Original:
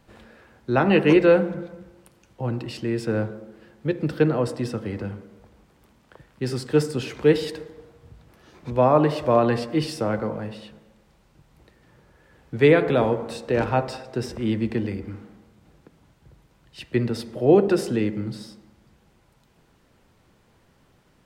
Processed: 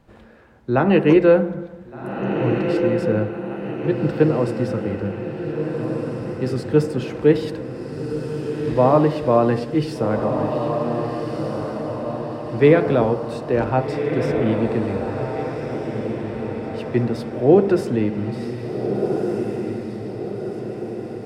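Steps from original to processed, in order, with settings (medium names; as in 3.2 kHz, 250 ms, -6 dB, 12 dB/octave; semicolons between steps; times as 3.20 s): treble shelf 2 kHz -9 dB; echo that smears into a reverb 1579 ms, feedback 56%, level -5.5 dB; trim +3 dB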